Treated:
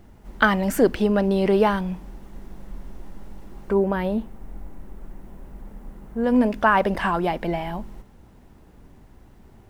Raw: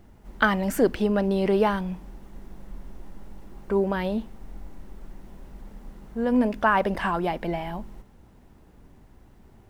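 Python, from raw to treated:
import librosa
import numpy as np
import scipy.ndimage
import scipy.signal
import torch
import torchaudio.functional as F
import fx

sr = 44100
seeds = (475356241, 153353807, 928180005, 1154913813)

y = fx.peak_eq(x, sr, hz=4500.0, db=-7.5, octaves=1.8, at=(3.73, 6.24))
y = y * 10.0 ** (3.0 / 20.0)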